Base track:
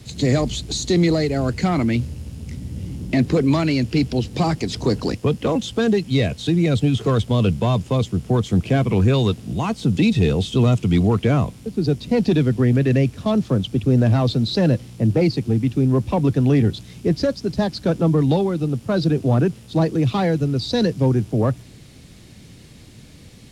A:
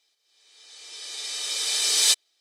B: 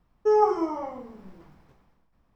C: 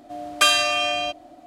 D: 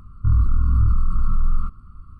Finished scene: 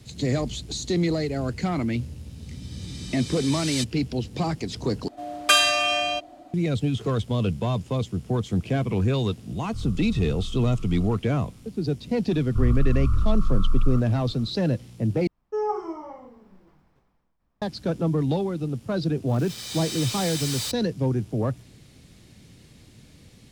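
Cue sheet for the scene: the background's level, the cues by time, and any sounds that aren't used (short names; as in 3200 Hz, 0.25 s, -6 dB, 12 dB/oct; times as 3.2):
base track -6.5 dB
1.7 add A -9.5 dB + high shelf 11000 Hz -9 dB
5.08 replace with C -0.5 dB
9.49 add D -16.5 dB
12.31 add D -1.5 dB + bell 89 Hz -6 dB 2.2 oct
15.27 replace with B -6.5 dB
18.57 add A -17 dB + fuzz box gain 39 dB, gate -41 dBFS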